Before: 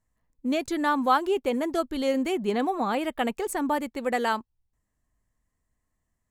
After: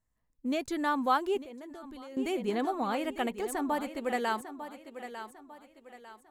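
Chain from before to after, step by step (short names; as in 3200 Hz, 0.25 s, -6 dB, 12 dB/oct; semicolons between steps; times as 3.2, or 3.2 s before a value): thinning echo 0.899 s, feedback 39%, high-pass 160 Hz, level -11 dB; 1.42–2.17 level quantiser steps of 20 dB; gain -5 dB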